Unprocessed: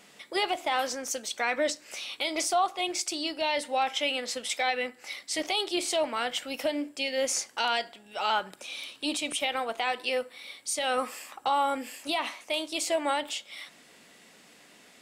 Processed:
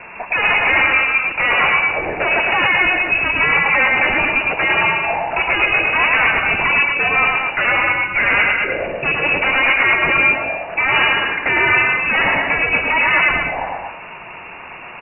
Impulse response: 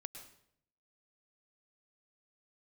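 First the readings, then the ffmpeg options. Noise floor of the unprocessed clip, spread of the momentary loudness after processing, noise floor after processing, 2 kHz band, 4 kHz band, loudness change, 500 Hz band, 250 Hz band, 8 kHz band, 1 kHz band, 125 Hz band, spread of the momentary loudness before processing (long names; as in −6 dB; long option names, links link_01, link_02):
−56 dBFS, 8 LU, −34 dBFS, +22.0 dB, +6.5 dB, +15.5 dB, +7.5 dB, +7.5 dB, below −40 dB, +11.0 dB, can't be measured, 8 LU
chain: -filter_complex "[0:a]asplit=2[link_01][link_02];[link_02]asubboost=boost=10.5:cutoff=96[link_03];[1:a]atrim=start_sample=2205[link_04];[link_03][link_04]afir=irnorm=-1:irlink=0,volume=5dB[link_05];[link_01][link_05]amix=inputs=2:normalize=0,aeval=exprs='0.335*sin(PI/2*5.01*val(0)/0.335)':channel_layout=same,aecho=1:1:107.9|230.3:0.708|0.501,lowpass=frequency=2500:width_type=q:width=0.5098,lowpass=frequency=2500:width_type=q:width=0.6013,lowpass=frequency=2500:width_type=q:width=0.9,lowpass=frequency=2500:width_type=q:width=2.563,afreqshift=-2900,volume=-2dB"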